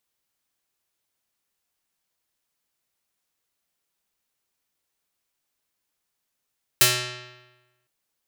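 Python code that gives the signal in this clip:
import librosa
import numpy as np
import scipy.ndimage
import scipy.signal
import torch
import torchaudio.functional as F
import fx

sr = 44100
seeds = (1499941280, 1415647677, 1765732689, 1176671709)

y = fx.pluck(sr, length_s=1.06, note=47, decay_s=1.15, pick=0.49, brightness='medium')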